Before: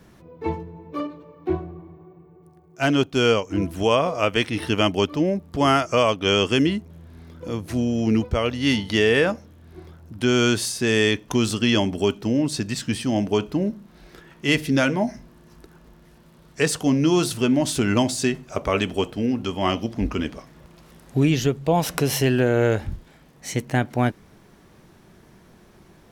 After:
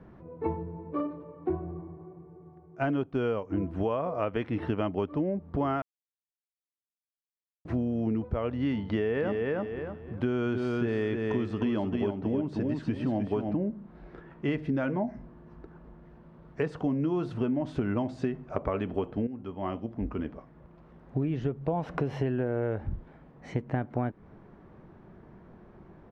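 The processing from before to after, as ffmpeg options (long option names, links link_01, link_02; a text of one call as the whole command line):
ffmpeg -i in.wav -filter_complex "[0:a]asplit=3[link_01][link_02][link_03];[link_01]afade=type=out:start_time=9.15:duration=0.02[link_04];[link_02]aecho=1:1:307|614|921:0.562|0.135|0.0324,afade=type=in:start_time=9.15:duration=0.02,afade=type=out:start_time=13.55:duration=0.02[link_05];[link_03]afade=type=in:start_time=13.55:duration=0.02[link_06];[link_04][link_05][link_06]amix=inputs=3:normalize=0,asplit=4[link_07][link_08][link_09][link_10];[link_07]atrim=end=5.82,asetpts=PTS-STARTPTS,afade=type=out:start_time=5.816:duration=0.004:curve=hsin[link_11];[link_08]atrim=start=5.82:end=7.65,asetpts=PTS-STARTPTS,volume=0[link_12];[link_09]atrim=start=7.65:end=19.27,asetpts=PTS-STARTPTS,afade=type=in:duration=0.004:curve=hsin,afade=type=out:start_time=11.616:duration=0.004:curve=hsin:silence=0.237137[link_13];[link_10]atrim=start=19.27,asetpts=PTS-STARTPTS,afade=type=in:duration=3.13:silence=0.237137[link_14];[link_11][link_12][link_13][link_14]concat=n=4:v=0:a=1,lowpass=1300,acompressor=threshold=-26dB:ratio=6" out.wav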